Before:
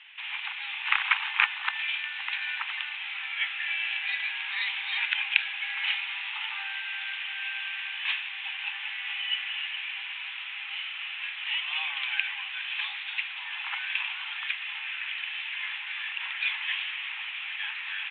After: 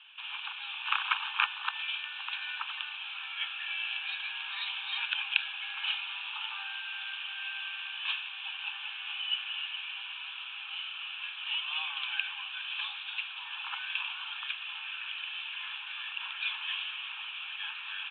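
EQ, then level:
high-frequency loss of the air 65 metres
phaser with its sweep stopped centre 2,000 Hz, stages 6
0.0 dB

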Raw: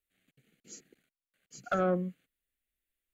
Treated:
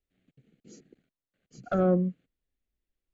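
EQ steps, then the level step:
high-frequency loss of the air 170 metres
parametric band 2,000 Hz −12.5 dB 2.9 octaves
+8.5 dB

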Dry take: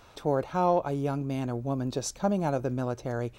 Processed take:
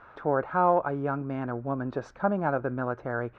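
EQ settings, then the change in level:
low-pass with resonance 1,500 Hz, resonance Q 3
low-shelf EQ 120 Hz −7 dB
0.0 dB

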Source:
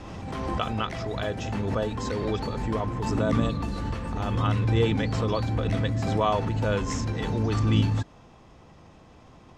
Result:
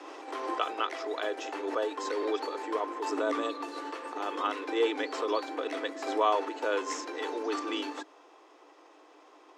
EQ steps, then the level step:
Chebyshev high-pass with heavy ripple 290 Hz, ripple 3 dB
0.0 dB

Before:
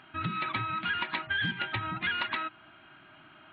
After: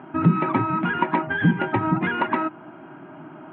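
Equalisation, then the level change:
loudspeaker in its box 150–2,800 Hz, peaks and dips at 160 Hz +8 dB, 260 Hz +4 dB, 910 Hz +7 dB
tilt shelving filter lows +9.5 dB, about 1,500 Hz
parametric band 410 Hz +8 dB 1.5 octaves
+4.0 dB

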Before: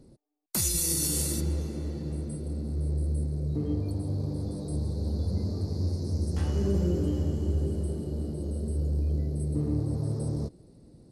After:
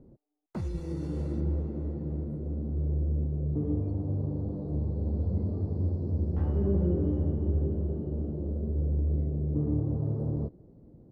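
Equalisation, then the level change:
low-pass filter 1,000 Hz 12 dB per octave
0.0 dB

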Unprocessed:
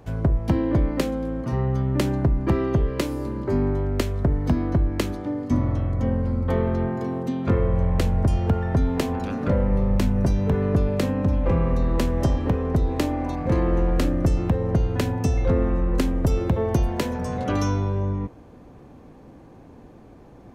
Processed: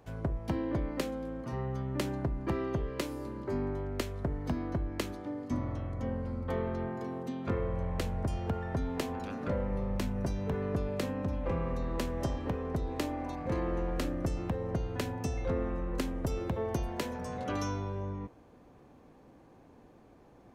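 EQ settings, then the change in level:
low-shelf EQ 300 Hz −6.5 dB
−7.5 dB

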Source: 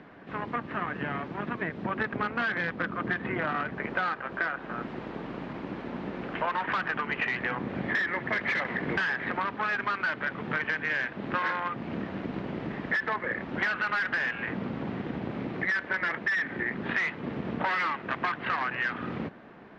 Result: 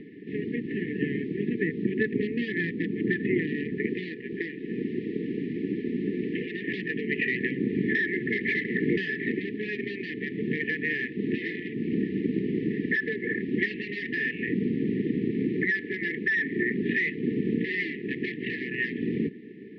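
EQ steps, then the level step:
band-pass filter 280–4,600 Hz
linear-phase brick-wall band-stop 470–1,700 Hz
spectral tilt −3.5 dB per octave
+5.5 dB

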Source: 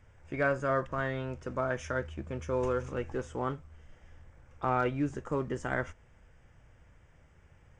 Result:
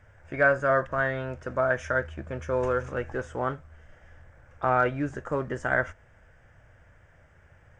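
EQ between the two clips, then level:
graphic EQ with 15 bands 100 Hz +5 dB, 630 Hz +8 dB, 1,600 Hz +10 dB
0.0 dB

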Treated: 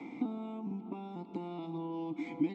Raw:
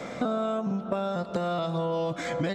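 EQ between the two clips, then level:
dynamic equaliser 1,300 Hz, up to −7 dB, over −46 dBFS, Q 0.8
formant filter u
+6.0 dB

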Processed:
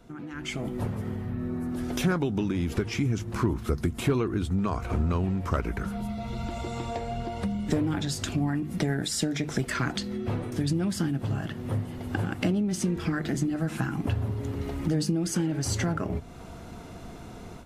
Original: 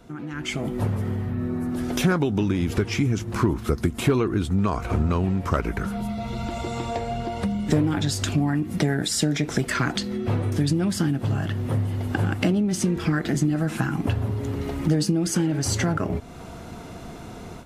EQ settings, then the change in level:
low-shelf EQ 83 Hz +5.5 dB
mains-hum notches 50/100/150 Hz
−5.0 dB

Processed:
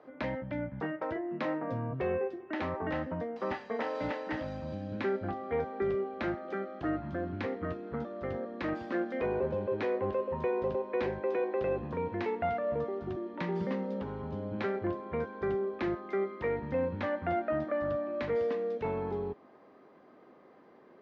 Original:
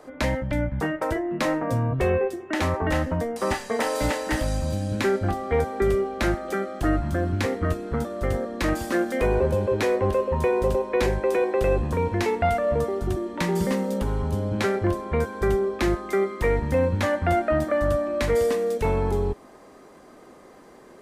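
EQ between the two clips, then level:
band-pass filter 140–5,600 Hz
high-frequency loss of the air 250 metres
−8.0 dB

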